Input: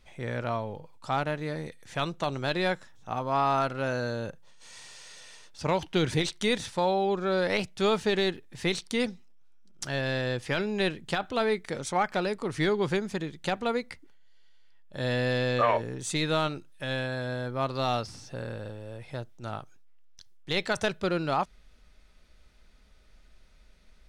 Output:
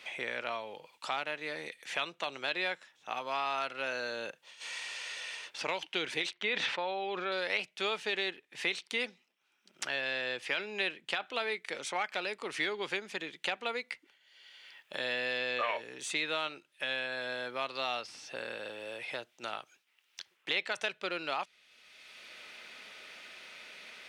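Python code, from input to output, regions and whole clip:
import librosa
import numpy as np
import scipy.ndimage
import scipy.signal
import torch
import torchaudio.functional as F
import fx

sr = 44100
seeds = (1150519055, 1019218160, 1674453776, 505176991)

y = fx.chain(x, sr, fx.lowpass(hz=3000.0, slope=12),
    fx.sustainer(db_per_s=30.0), at=(6.33, 7.32))
y = scipy.signal.sosfilt(scipy.signal.butter(2, 390.0, 'highpass', fs=sr, output='sos'), y)
y = fx.peak_eq(y, sr, hz=2600.0, db=11.5, octaves=1.2)
y = fx.band_squash(y, sr, depth_pct=70)
y = F.gain(torch.from_numpy(y), -8.5).numpy()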